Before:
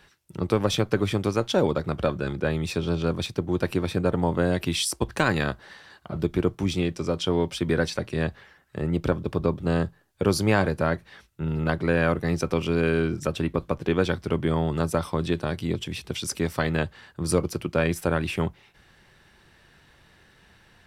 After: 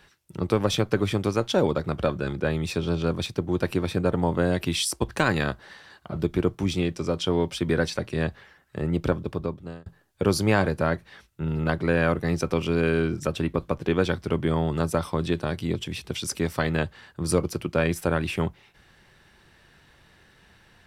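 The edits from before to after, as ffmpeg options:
-filter_complex "[0:a]asplit=2[a][b];[a]atrim=end=9.86,asetpts=PTS-STARTPTS,afade=t=out:st=9.11:d=0.75[c];[b]atrim=start=9.86,asetpts=PTS-STARTPTS,afade=t=in:d=0.004:c=hsin[d];[c][d]concat=n=2:v=0:a=1"

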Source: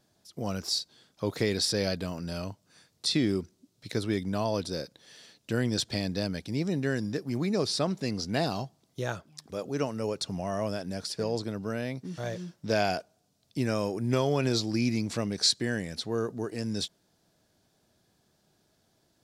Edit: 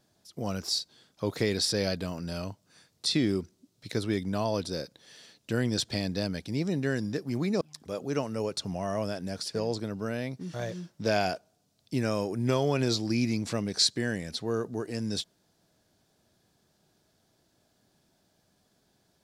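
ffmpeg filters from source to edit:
-filter_complex "[0:a]asplit=2[a][b];[a]atrim=end=7.612[c];[b]atrim=start=9.248[d];[c][d]acrossfade=d=0.004:c1=hsin:c2=hsin"

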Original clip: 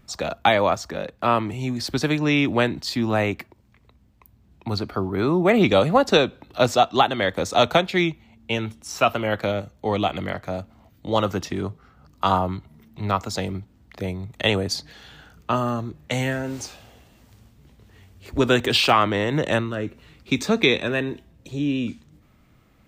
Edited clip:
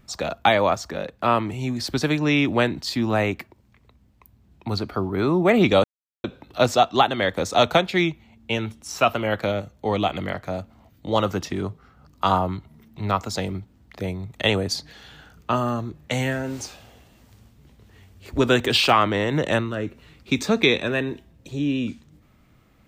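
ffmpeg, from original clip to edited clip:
-filter_complex "[0:a]asplit=3[a][b][c];[a]atrim=end=5.84,asetpts=PTS-STARTPTS,afade=t=out:st=5.836:d=0.004:c=hsin[d];[b]atrim=start=5.84:end=6.24,asetpts=PTS-STARTPTS,volume=0[e];[c]atrim=start=6.24,asetpts=PTS-STARTPTS,afade=t=in:d=0.004:c=hsin[f];[d][e][f]concat=n=3:v=0:a=1"

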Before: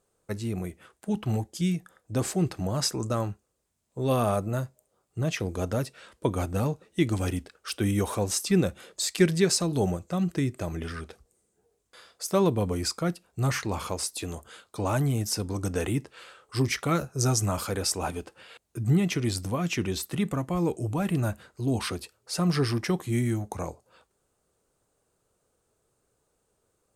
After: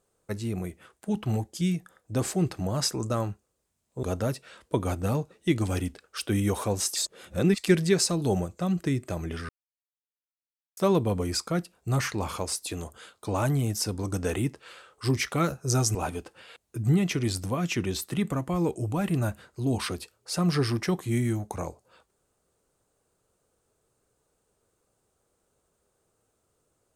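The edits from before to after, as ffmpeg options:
-filter_complex "[0:a]asplit=7[a][b][c][d][e][f][g];[a]atrim=end=4.032[h];[b]atrim=start=5.538:end=8.472[i];[c]atrim=start=8.468:end=9.092,asetpts=PTS-STARTPTS,areverse[j];[d]atrim=start=9.088:end=11,asetpts=PTS-STARTPTS,afade=t=out:st=1.908:d=0.004:c=hsin[k];[e]atrim=start=11:end=12.28,asetpts=PTS-STARTPTS,volume=0[l];[f]atrim=start=12.28:end=17.462,asetpts=PTS-STARTPTS,afade=t=in:d=0.004:c=hsin[m];[g]atrim=start=17.958[n];[h][i]acrossfade=d=0.004:c1=hsin:c2=hsin[o];[o][j]acrossfade=d=0.004:c1=hsin:c2=hsin[p];[k][l][m]concat=n=3:v=0:a=1[q];[p][q]acrossfade=d=0.004:c1=hsin:c2=hsin[r];[r][n]acrossfade=d=0.004:c1=hsin:c2=hsin"

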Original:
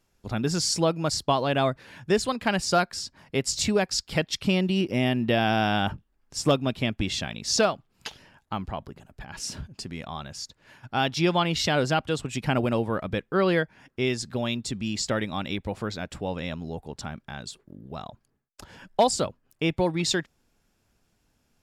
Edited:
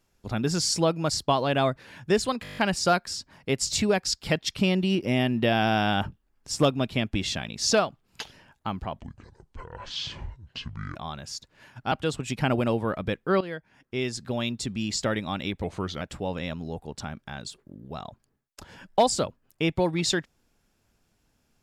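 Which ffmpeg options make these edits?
-filter_complex "[0:a]asplit=14[a][b][c][d][e][f][g][h][i][j][k][l][m][n];[a]atrim=end=2.452[o];[b]atrim=start=2.428:end=2.452[p];[c]atrim=start=2.428:end=2.452[q];[d]atrim=start=2.428:end=2.452[r];[e]atrim=start=2.428:end=2.452[s];[f]atrim=start=2.428:end=2.452[t];[g]atrim=start=2.428:end=2.452[u];[h]atrim=start=2.428:end=8.854[v];[i]atrim=start=8.85:end=10.03,asetpts=PTS-STARTPTS,asetrate=26460,aresample=44100[w];[j]atrim=start=10.026:end=10.992[x];[k]atrim=start=11.968:end=13.46,asetpts=PTS-STARTPTS,afade=t=out:st=1.488:d=0.004:c=hsin:silence=0.149624[y];[l]atrim=start=13.46:end=15.694,asetpts=PTS-STARTPTS,afade=t=in:d=1.36:c=qsin:silence=0.149624[z];[m]atrim=start=15.69:end=16.02,asetpts=PTS-STARTPTS,asetrate=38808,aresample=44100[aa];[n]atrim=start=16.016[ab];[o][p]acrossfade=d=0.004:c1=hsin:c2=hsin[ac];[ac][q]acrossfade=d=0.004:c1=hsin:c2=hsin[ad];[ad][r]acrossfade=d=0.004:c1=hsin:c2=hsin[ae];[ae][s]acrossfade=d=0.004:c1=hsin:c2=hsin[af];[af][t]acrossfade=d=0.004:c1=hsin:c2=hsin[ag];[ag][u]acrossfade=d=0.004:c1=hsin:c2=hsin[ah];[ah][v]acrossfade=d=0.004:c1=hsin:c2=hsin[ai];[ai][w]acrossfade=d=0.004:c1=hsin:c2=hsin[aj];[aj][x]acrossfade=d=0.004:c1=hsin:c2=hsin[ak];[y][z]concat=n=2:v=0:a=1[al];[ak][al]acrossfade=d=0.004:c1=hsin:c2=hsin[am];[am][aa]acrossfade=d=0.004:c1=hsin:c2=hsin[an];[an][ab]acrossfade=d=0.004:c1=hsin:c2=hsin"

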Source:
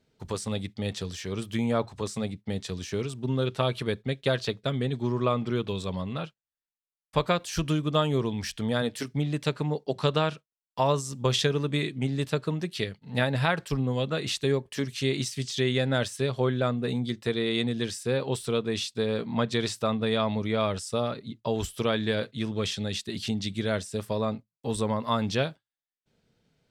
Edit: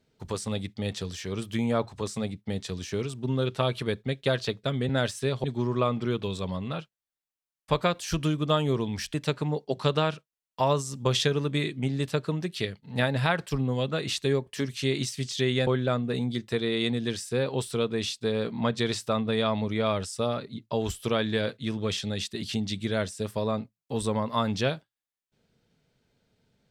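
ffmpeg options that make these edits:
-filter_complex "[0:a]asplit=5[a][b][c][d][e];[a]atrim=end=4.892[f];[b]atrim=start=15.858:end=16.412[g];[c]atrim=start=4.888:end=8.592[h];[d]atrim=start=9.328:end=15.862[i];[e]atrim=start=16.408[j];[f][g]acrossfade=d=0.004:c1=hsin:c2=hsin[k];[k][h]acrossfade=d=0.004:c1=hsin:c2=hsin[l];[l][i]acrossfade=d=0.004:c1=hsin:c2=hsin[m];[m][j]acrossfade=d=0.004:c1=hsin:c2=hsin"

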